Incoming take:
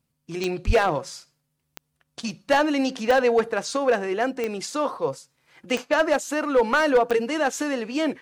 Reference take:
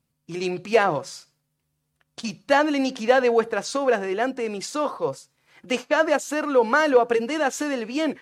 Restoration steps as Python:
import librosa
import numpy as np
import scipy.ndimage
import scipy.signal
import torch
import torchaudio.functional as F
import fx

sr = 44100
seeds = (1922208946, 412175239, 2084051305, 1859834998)

y = fx.fix_declip(x, sr, threshold_db=-12.5)
y = fx.fix_declick_ar(y, sr, threshold=10.0)
y = fx.highpass(y, sr, hz=140.0, slope=24, at=(0.66, 0.78), fade=0.02)